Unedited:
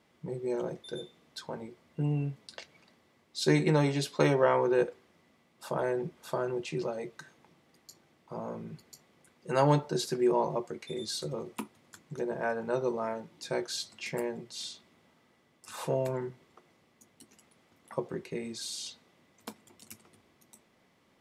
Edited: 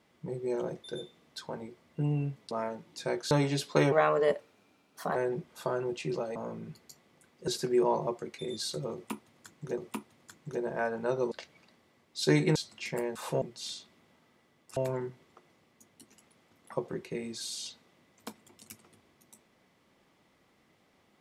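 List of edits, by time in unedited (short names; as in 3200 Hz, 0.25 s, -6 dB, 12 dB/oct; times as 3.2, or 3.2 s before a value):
2.51–3.75 swap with 12.96–13.76
4.36–5.83 speed 119%
7.03–8.39 cut
9.51–9.96 cut
11.42–12.26 loop, 2 plays
15.71–15.97 move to 14.36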